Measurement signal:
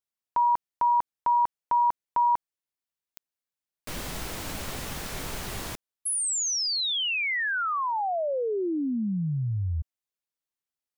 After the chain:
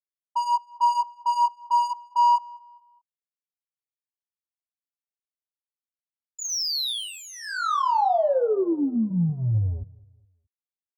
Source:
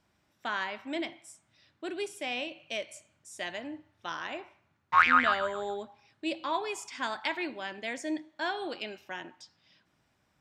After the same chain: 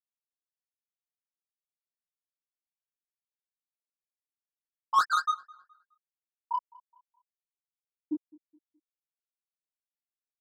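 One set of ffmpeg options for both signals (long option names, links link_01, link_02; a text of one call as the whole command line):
ffmpeg -i in.wav -filter_complex "[0:a]afftfilt=real='re*gte(hypot(re,im),0.447)':imag='im*gte(hypot(re,im),0.447)':win_size=1024:overlap=0.75,asubboost=boost=2.5:cutoff=180,asplit=2[link_01][link_02];[link_02]asoftclip=type=tanh:threshold=-29.5dB,volume=-6dB[link_03];[link_01][link_03]amix=inputs=2:normalize=0,asplit=2[link_04][link_05];[link_05]highpass=frequency=720:poles=1,volume=23dB,asoftclip=type=tanh:threshold=-11dB[link_06];[link_04][link_06]amix=inputs=2:normalize=0,lowpass=frequency=3200:poles=1,volume=-6dB,flanger=delay=17.5:depth=7.5:speed=0.22,asuperstop=centerf=2200:order=4:qfactor=0.83,asplit=2[link_07][link_08];[link_08]adelay=210,lowpass=frequency=2800:poles=1,volume=-23dB,asplit=2[link_09][link_10];[link_10]adelay=210,lowpass=frequency=2800:poles=1,volume=0.38,asplit=2[link_11][link_12];[link_12]adelay=210,lowpass=frequency=2800:poles=1,volume=0.38[link_13];[link_07][link_09][link_11][link_13]amix=inputs=4:normalize=0" out.wav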